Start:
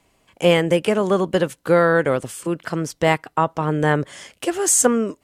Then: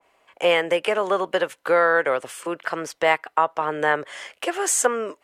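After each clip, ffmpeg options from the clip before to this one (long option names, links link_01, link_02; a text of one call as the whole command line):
ffmpeg -i in.wav -filter_complex "[0:a]acrossover=split=440 2800:gain=0.0794 1 0.251[link_01][link_02][link_03];[link_01][link_02][link_03]amix=inputs=3:normalize=0,asplit=2[link_04][link_05];[link_05]acompressor=threshold=-28dB:ratio=6,volume=1dB[link_06];[link_04][link_06]amix=inputs=2:normalize=0,adynamicequalizer=threshold=0.0316:dfrequency=1700:dqfactor=0.7:tfrequency=1700:tqfactor=0.7:attack=5:release=100:ratio=0.375:range=2:mode=boostabove:tftype=highshelf,volume=-2dB" out.wav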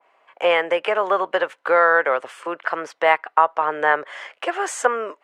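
ffmpeg -i in.wav -af "bandpass=frequency=1100:width_type=q:width=0.71:csg=0,volume=4.5dB" out.wav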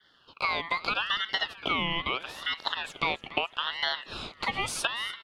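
ffmpeg -i in.wav -filter_complex "[0:a]acompressor=threshold=-23dB:ratio=6,asplit=7[link_01][link_02][link_03][link_04][link_05][link_06][link_07];[link_02]adelay=288,afreqshift=-71,volume=-17dB[link_08];[link_03]adelay=576,afreqshift=-142,volume=-21.2dB[link_09];[link_04]adelay=864,afreqshift=-213,volume=-25.3dB[link_10];[link_05]adelay=1152,afreqshift=-284,volume=-29.5dB[link_11];[link_06]adelay=1440,afreqshift=-355,volume=-33.6dB[link_12];[link_07]adelay=1728,afreqshift=-426,volume=-37.8dB[link_13];[link_01][link_08][link_09][link_10][link_11][link_12][link_13]amix=inputs=7:normalize=0,aeval=exprs='val(0)*sin(2*PI*2000*n/s+2000*0.25/0.78*sin(2*PI*0.78*n/s))':channel_layout=same" out.wav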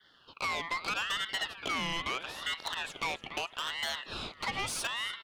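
ffmpeg -i in.wav -af "asoftclip=type=tanh:threshold=-27.5dB" out.wav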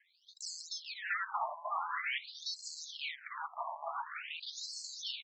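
ffmpeg -i in.wav -af "acrusher=samples=11:mix=1:aa=0.000001:lfo=1:lforange=11:lforate=2.3,aecho=1:1:934:0.473,afftfilt=real='re*between(b*sr/1024,810*pow(5900/810,0.5+0.5*sin(2*PI*0.47*pts/sr))/1.41,810*pow(5900/810,0.5+0.5*sin(2*PI*0.47*pts/sr))*1.41)':imag='im*between(b*sr/1024,810*pow(5900/810,0.5+0.5*sin(2*PI*0.47*pts/sr))/1.41,810*pow(5900/810,0.5+0.5*sin(2*PI*0.47*pts/sr))*1.41)':win_size=1024:overlap=0.75,volume=2dB" out.wav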